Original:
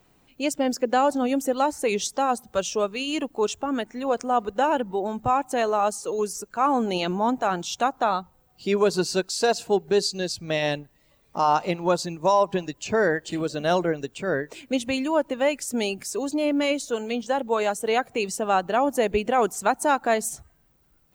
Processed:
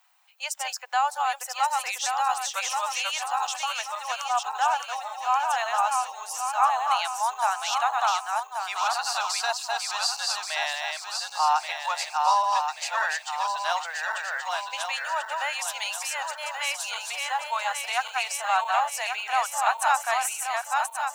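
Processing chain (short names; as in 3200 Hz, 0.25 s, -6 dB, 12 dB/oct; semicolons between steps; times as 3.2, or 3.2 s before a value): regenerating reverse delay 0.565 s, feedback 65%, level -3 dB; steep high-pass 760 Hz 48 dB/oct; 2.02–3.73 three-band squash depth 40%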